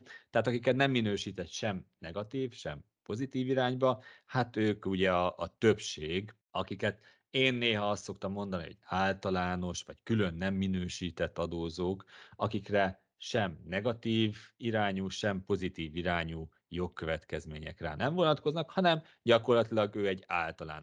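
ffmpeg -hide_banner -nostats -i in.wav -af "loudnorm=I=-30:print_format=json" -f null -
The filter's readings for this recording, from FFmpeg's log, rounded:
"input_i" : "-32.6",
"input_tp" : "-10.4",
"input_lra" : "4.2",
"input_thresh" : "-42.8",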